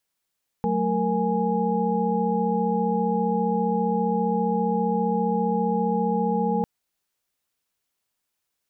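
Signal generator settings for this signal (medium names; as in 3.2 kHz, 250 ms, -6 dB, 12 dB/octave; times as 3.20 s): chord F#3/A3/A#4/G#5 sine, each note -26 dBFS 6.00 s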